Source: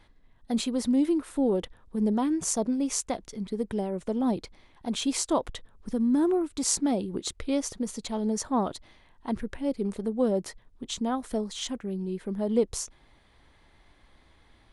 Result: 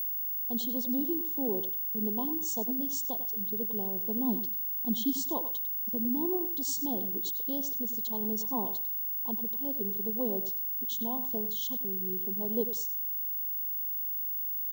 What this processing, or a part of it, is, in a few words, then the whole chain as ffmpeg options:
old television with a line whistle: -filter_complex "[0:a]highpass=frequency=210:width=0.5412,highpass=frequency=210:width=1.3066,equalizer=frequency=300:width_type=q:width=4:gain=-5,equalizer=frequency=600:width_type=q:width=4:gain=-9,equalizer=frequency=1300:width_type=q:width=4:gain=-9,equalizer=frequency=2300:width_type=q:width=4:gain=-9,equalizer=frequency=4800:width_type=q:width=4:gain=-4,lowpass=frequency=7000:width=0.5412,lowpass=frequency=7000:width=1.3066,aeval=exprs='val(0)+0.0562*sin(2*PI*15625*n/s)':channel_layout=same,asettb=1/sr,asplit=3[link_01][link_02][link_03];[link_01]atrim=end=3.664[link_04];[link_02]atrim=start=3.66:end=5.21,asetpts=PTS-STARTPTS,afade=type=in:duration=0.004:curve=qsin,afade=type=out:start_time=1.546:duration=0.004:curve=qsin,asubboost=boost=10.5:cutoff=250[link_05];[link_03]atrim=start=5.206[link_06];[link_04][link_05]acrossfade=duration=0.004:curve1=hsin:curve2=qsin[link_07];[link_07][link_06]acrossfade=duration=0.004:curve1=qsin:curve2=hsin,afftfilt=real='re*(1-between(b*sr/4096,1100,2900))':imag='im*(1-between(b*sr/4096,1100,2900))':win_size=4096:overlap=0.75,asplit=2[link_08][link_09];[link_09]adelay=97,lowpass=frequency=4500:poles=1,volume=-11.5dB,asplit=2[link_10][link_11];[link_11]adelay=97,lowpass=frequency=4500:poles=1,volume=0.2,asplit=2[link_12][link_13];[link_13]adelay=97,lowpass=frequency=4500:poles=1,volume=0.2[link_14];[link_08][link_10][link_12][link_14]amix=inputs=4:normalize=0,volume=-5dB"

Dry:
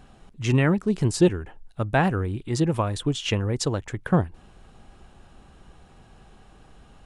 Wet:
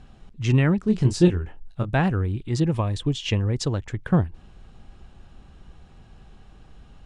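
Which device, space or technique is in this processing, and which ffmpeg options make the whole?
smiley-face EQ: -filter_complex "[0:a]lowpass=5300,lowshelf=frequency=170:gain=5,equalizer=frequency=760:width_type=o:width=3:gain=-3.5,highshelf=frequency=8800:gain=8,asettb=1/sr,asplit=3[link_01][link_02][link_03];[link_01]atrim=end=0.844[link_04];[link_02]atrim=start=0.84:end=1.89,asetpts=PTS-STARTPTS,afade=type=in:duration=0.004:curve=qsin,afade=type=out:start_time=1.046:duration=0.004:curve=qsin,asplit=2[link_05][link_06];[link_06]adelay=23,volume=-6dB[link_07];[link_05][link_07]amix=inputs=2:normalize=0,atrim=end_sample=46305[link_08];[link_03]atrim=start=1.886[link_09];[link_04][link_08]acrossfade=duration=0.004:curve1=hsin:curve2=qsin[link_10];[link_10][link_09]acrossfade=duration=0.004:curve1=qsin:curve2=hsin,asettb=1/sr,asplit=3[link_11][link_12][link_13];[link_11]atrim=end=2.754[link_14];[link_12]atrim=start=2.75:end=3.44,asetpts=PTS-STARTPTS,afade=type=in:duration=0.004:curve=qsin,afade=type=out:start_time=0.686:duration=0.004:curve=qsin,bandreject=frequency=1400:width=5.5[link_15];[link_13]atrim=start=3.436[link_16];[link_14][link_15]acrossfade=duration=0.004:curve1=hsin:curve2=qsin[link_17];[link_17][link_16]acrossfade=duration=0.004:curve1=qsin:curve2=hsin"

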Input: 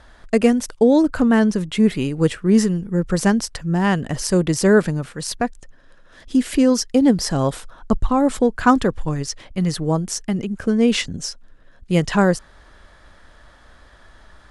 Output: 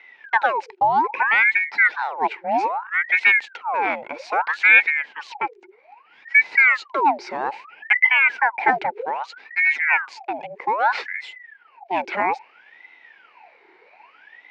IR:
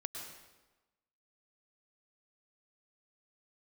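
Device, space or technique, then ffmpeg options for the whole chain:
voice changer toy: -filter_complex "[0:a]asettb=1/sr,asplit=3[link_01][link_02][link_03];[link_01]atrim=end=9.604[link_04];[link_02]atrim=start=9.6:end=10.1,asetpts=PTS-STARTPTS,afade=type=in:duration=0.004:curve=qsin,afade=type=out:start_time=0.496:duration=0.004:curve=qsin,aecho=1:1:7.5:0.71,atrim=end_sample=22050[link_05];[link_03]atrim=start=10.096[link_06];[link_04][link_05]acrossfade=duration=0.004:curve1=hsin:curve2=qsin[link_07];[link_07][link_06]acrossfade=duration=0.004:curve1=qsin:curve2=hsin,aeval=exprs='val(0)*sin(2*PI*1200*n/s+1200*0.7/0.62*sin(2*PI*0.62*n/s))':channel_layout=same,highpass=530,equalizer=frequency=610:width_type=q:width=4:gain=-5,equalizer=frequency=870:width_type=q:width=4:gain=7,equalizer=frequency=1200:width_type=q:width=4:gain=-10,equalizer=frequency=2300:width_type=q:width=4:gain=8,equalizer=frequency=3400:width_type=q:width=4:gain=-8,lowpass=frequency=3700:width=0.5412,lowpass=frequency=3700:width=1.3066"

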